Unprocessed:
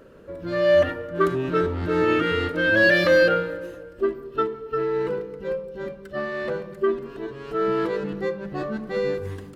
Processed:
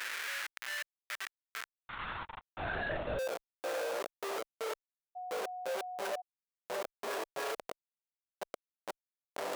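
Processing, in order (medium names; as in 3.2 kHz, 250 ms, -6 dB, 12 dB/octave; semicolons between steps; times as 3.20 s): peaking EQ 1.6 kHz +7 dB 0.3 oct; inverted gate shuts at -23 dBFS, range -37 dB; Schmitt trigger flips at -51 dBFS; high-pass sweep 1.8 kHz -> 600 Hz, 1.45–2.95 s; 1.89–3.19 s: LPC vocoder at 8 kHz whisper; 5.15–6.20 s: whistle 730 Hz -52 dBFS; level flattener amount 50%; trim +4.5 dB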